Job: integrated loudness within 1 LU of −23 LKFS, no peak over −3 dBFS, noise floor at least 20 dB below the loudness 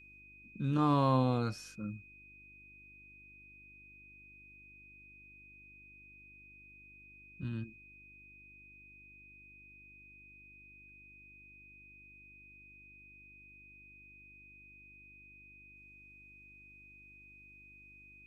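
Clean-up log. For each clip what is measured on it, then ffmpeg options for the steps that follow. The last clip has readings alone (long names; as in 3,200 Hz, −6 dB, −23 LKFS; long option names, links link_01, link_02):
mains hum 50 Hz; hum harmonics up to 350 Hz; level of the hum −62 dBFS; interfering tone 2,500 Hz; level of the tone −55 dBFS; integrated loudness −33.5 LKFS; sample peak −17.5 dBFS; target loudness −23.0 LKFS
→ -af "bandreject=frequency=50:width_type=h:width=4,bandreject=frequency=100:width_type=h:width=4,bandreject=frequency=150:width_type=h:width=4,bandreject=frequency=200:width_type=h:width=4,bandreject=frequency=250:width_type=h:width=4,bandreject=frequency=300:width_type=h:width=4,bandreject=frequency=350:width_type=h:width=4"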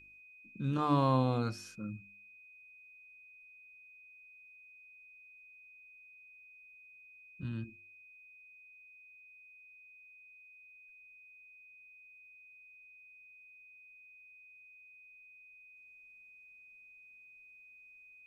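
mains hum none found; interfering tone 2,500 Hz; level of the tone −55 dBFS
→ -af "bandreject=frequency=2500:width=30"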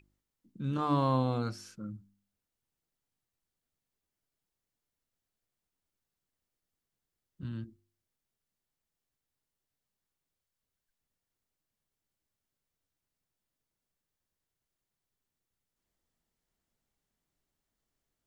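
interfering tone none found; integrated loudness −33.0 LKFS; sample peak −17.5 dBFS; target loudness −23.0 LKFS
→ -af "volume=10dB"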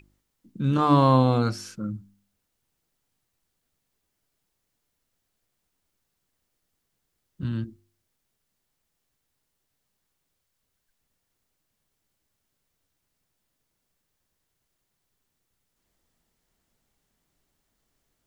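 integrated loudness −23.0 LKFS; sample peak −7.5 dBFS; background noise floor −79 dBFS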